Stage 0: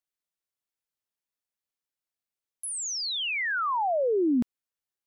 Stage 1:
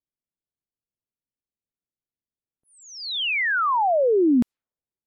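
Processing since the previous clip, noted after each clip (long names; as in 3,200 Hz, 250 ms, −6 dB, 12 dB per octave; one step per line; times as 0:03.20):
low-pass that shuts in the quiet parts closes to 340 Hz, open at −24.5 dBFS
level +6 dB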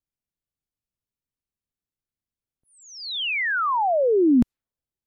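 low-shelf EQ 150 Hz +11.5 dB
level −1.5 dB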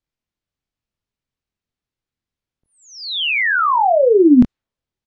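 low-pass filter 5,100 Hz 12 dB per octave
double-tracking delay 24 ms −7 dB
level +6.5 dB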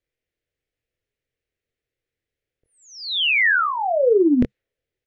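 drawn EQ curve 130 Hz 0 dB, 200 Hz −8 dB, 480 Hz +11 dB, 1,000 Hz −11 dB, 1,900 Hz +7 dB, 4,500 Hz −3 dB
reversed playback
downward compressor 5 to 1, threshold −15 dBFS, peak gain reduction 13.5 dB
reversed playback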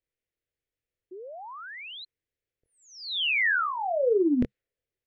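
sound drawn into the spectrogram rise, 0:01.11–0:02.05, 350–4,200 Hz −34 dBFS
level −7 dB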